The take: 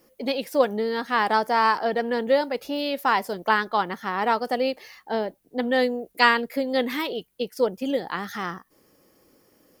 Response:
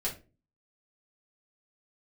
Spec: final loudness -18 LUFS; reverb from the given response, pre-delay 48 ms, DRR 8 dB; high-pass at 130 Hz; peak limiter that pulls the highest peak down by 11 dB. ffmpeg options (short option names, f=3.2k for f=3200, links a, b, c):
-filter_complex "[0:a]highpass=130,alimiter=limit=-14dB:level=0:latency=1,asplit=2[a][b];[1:a]atrim=start_sample=2205,adelay=48[c];[b][c]afir=irnorm=-1:irlink=0,volume=-12dB[d];[a][d]amix=inputs=2:normalize=0,volume=8dB"